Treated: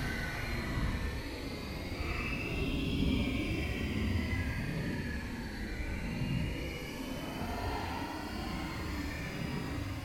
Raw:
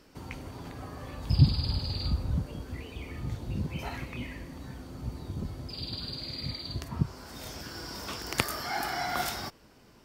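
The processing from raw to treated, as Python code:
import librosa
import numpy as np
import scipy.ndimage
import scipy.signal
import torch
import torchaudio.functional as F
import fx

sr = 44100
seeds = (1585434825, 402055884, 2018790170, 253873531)

y = fx.peak_eq(x, sr, hz=120.0, db=-12.0, octaves=0.24)
y = fx.echo_feedback(y, sr, ms=689, feedback_pct=48, wet_db=-5.5)
y = fx.wow_flutter(y, sr, seeds[0], rate_hz=2.1, depth_cents=150.0)
y = fx.paulstretch(y, sr, seeds[1], factor=13.0, window_s=0.05, from_s=3.97)
y = F.gain(torch.from_numpy(y), 2.0).numpy()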